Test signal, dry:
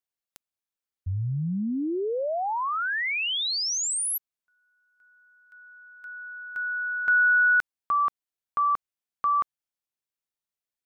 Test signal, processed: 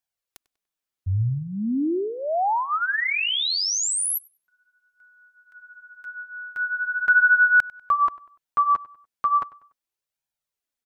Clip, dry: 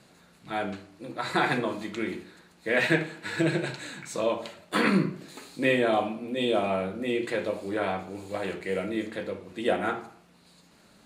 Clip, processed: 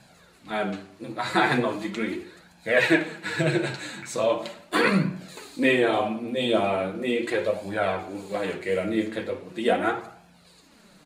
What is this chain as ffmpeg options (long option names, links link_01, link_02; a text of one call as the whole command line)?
ffmpeg -i in.wav -filter_complex "[0:a]flanger=delay=1.2:depth=8.2:regen=8:speed=0.39:shape=sinusoidal,asplit=2[link_01][link_02];[link_02]adelay=97,lowpass=frequency=5000:poles=1,volume=-20dB,asplit=2[link_03][link_04];[link_04]adelay=97,lowpass=frequency=5000:poles=1,volume=0.38,asplit=2[link_05][link_06];[link_06]adelay=97,lowpass=frequency=5000:poles=1,volume=0.38[link_07];[link_03][link_05][link_07]amix=inputs=3:normalize=0[link_08];[link_01][link_08]amix=inputs=2:normalize=0,volume=6.5dB" out.wav